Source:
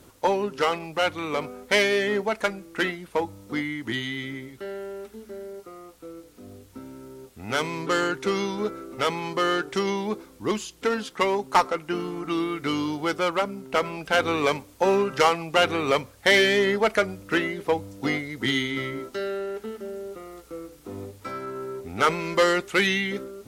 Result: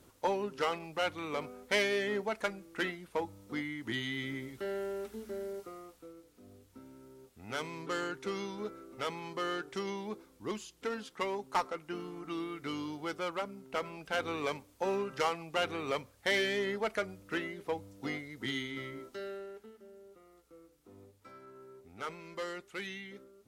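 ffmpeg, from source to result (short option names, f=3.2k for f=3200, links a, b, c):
-af "volume=-2dB,afade=t=in:st=3.76:d=1.02:silence=0.446684,afade=t=out:st=5.52:d=0.63:silence=0.316228,afade=t=out:st=19.29:d=0.43:silence=0.421697"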